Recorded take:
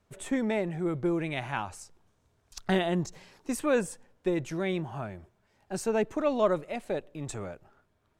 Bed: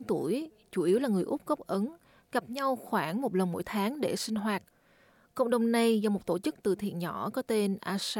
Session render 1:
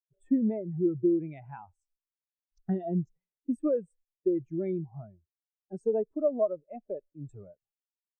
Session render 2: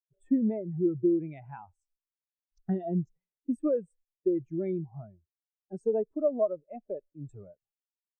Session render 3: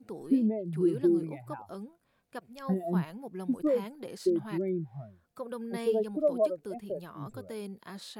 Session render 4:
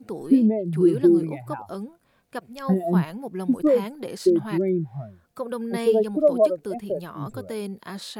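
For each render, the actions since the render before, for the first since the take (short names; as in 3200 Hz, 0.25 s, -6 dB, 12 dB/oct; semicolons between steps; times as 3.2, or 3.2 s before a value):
compressor 8:1, threshold -28 dBFS, peak gain reduction 9.5 dB; spectral expander 2.5:1
nothing audible
add bed -11.5 dB
gain +8.5 dB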